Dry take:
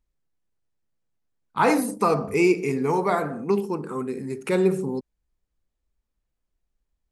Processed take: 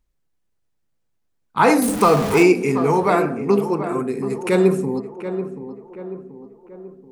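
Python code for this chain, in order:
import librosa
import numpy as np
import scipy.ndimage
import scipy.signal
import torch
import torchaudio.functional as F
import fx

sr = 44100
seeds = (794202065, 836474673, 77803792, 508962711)

y = fx.zero_step(x, sr, step_db=-26.0, at=(1.82, 2.43))
y = fx.echo_tape(y, sr, ms=732, feedback_pct=54, wet_db=-9, lp_hz=1300.0, drive_db=3.0, wow_cents=9)
y = F.gain(torch.from_numpy(y), 5.0).numpy()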